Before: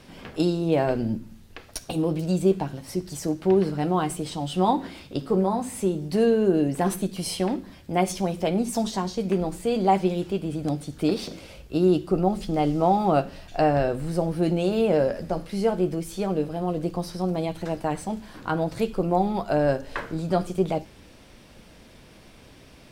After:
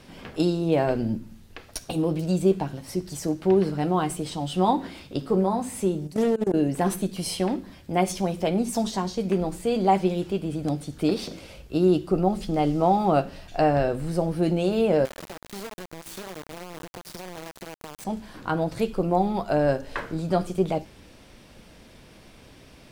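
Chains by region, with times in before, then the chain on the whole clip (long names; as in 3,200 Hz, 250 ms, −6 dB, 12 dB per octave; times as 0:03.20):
0:06.07–0:06.54: high shelf with overshoot 5,400 Hz +6.5 dB, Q 1.5 + output level in coarse steps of 21 dB + highs frequency-modulated by the lows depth 0.33 ms
0:15.05–0:18.05: low-shelf EQ 130 Hz −6.5 dB + downward compressor 16 to 1, threshold −35 dBFS + bit-depth reduction 6 bits, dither none
whole clip: no processing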